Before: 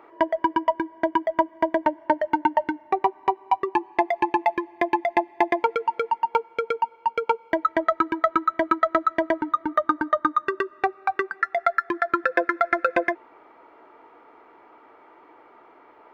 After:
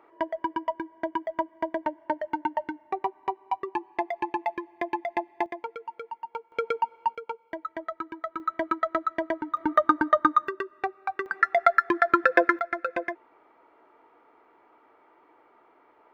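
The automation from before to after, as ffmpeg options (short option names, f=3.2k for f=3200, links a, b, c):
-af "asetnsamples=n=441:p=0,asendcmd='5.46 volume volume -14dB;6.52 volume volume -2.5dB;7.15 volume volume -13dB;8.4 volume volume -6dB;9.57 volume volume 1dB;10.48 volume volume -6.5dB;11.26 volume volume 2dB;12.59 volume volume -8dB',volume=-7.5dB"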